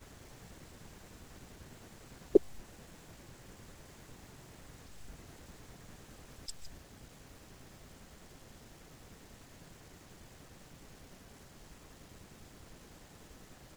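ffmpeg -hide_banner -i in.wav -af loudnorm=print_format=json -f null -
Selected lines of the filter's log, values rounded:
"input_i" : "-44.6",
"input_tp" : "-8.6",
"input_lra" : "16.9",
"input_thresh" : "-55.6",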